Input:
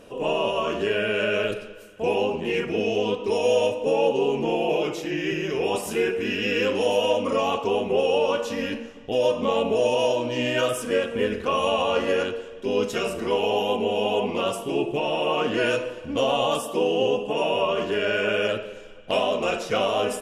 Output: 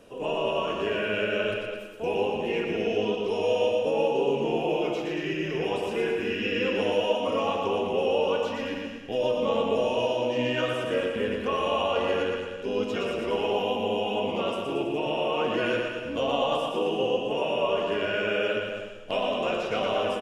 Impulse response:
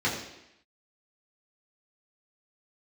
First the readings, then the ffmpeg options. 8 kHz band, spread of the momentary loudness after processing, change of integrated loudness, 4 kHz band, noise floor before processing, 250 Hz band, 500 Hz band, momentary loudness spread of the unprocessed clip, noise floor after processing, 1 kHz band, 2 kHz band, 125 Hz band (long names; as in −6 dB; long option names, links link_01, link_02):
below −10 dB, 5 LU, −3.0 dB, −3.5 dB, −41 dBFS, −2.5 dB, −3.0 dB, 5 LU, −36 dBFS, −3.0 dB, −3.0 dB, −2.5 dB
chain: -filter_complex "[0:a]acrossover=split=170|4700[link_01][link_02][link_03];[link_03]acompressor=threshold=-54dB:ratio=6[link_04];[link_01][link_02][link_04]amix=inputs=3:normalize=0,aecho=1:1:120|228|325.2|412.7|491.4:0.631|0.398|0.251|0.158|0.1,volume=-5dB"